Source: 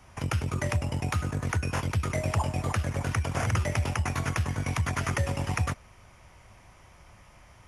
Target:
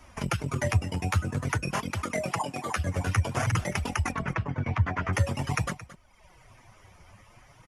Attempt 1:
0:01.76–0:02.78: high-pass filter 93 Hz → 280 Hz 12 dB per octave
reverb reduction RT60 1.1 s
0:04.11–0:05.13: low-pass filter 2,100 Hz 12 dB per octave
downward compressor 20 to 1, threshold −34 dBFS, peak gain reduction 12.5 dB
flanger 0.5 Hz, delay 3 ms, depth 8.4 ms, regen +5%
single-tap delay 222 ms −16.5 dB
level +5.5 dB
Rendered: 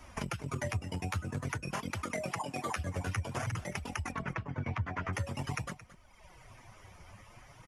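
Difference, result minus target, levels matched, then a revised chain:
downward compressor: peak gain reduction +12.5 dB
0:01.76–0:02.78: high-pass filter 93 Hz → 280 Hz 12 dB per octave
reverb reduction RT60 1.1 s
0:04.11–0:05.13: low-pass filter 2,100 Hz 12 dB per octave
flanger 0.5 Hz, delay 3 ms, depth 8.4 ms, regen +5%
single-tap delay 222 ms −16.5 dB
level +5.5 dB

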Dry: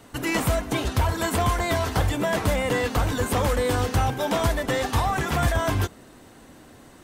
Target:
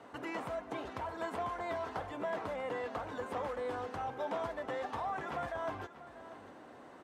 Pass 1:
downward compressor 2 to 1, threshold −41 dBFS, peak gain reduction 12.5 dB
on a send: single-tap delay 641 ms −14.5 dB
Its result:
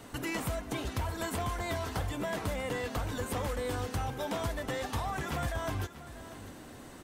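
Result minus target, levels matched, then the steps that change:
1,000 Hz band −3.5 dB
add after downward compressor: resonant band-pass 790 Hz, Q 0.79

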